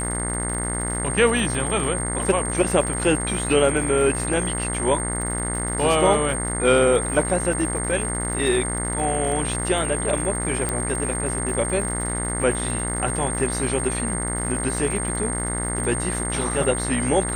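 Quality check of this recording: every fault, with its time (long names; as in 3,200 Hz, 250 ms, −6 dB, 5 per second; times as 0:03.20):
mains buzz 60 Hz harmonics 36 −28 dBFS
surface crackle 150 per second −31 dBFS
whistle 8,600 Hz −27 dBFS
0:10.69: click −10 dBFS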